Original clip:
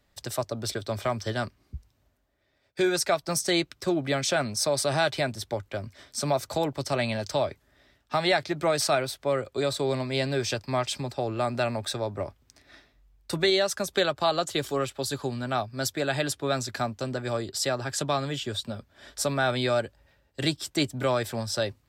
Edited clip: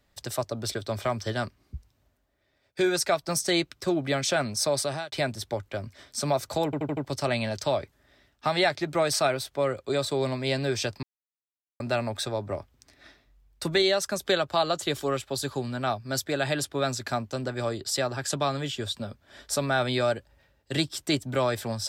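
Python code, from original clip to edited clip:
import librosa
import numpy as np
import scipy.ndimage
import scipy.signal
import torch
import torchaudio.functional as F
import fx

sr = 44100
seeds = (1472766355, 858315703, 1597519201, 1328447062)

y = fx.edit(x, sr, fx.fade_out_span(start_s=4.77, length_s=0.35),
    fx.stutter(start_s=6.65, slice_s=0.08, count=5),
    fx.silence(start_s=10.71, length_s=0.77), tone=tone)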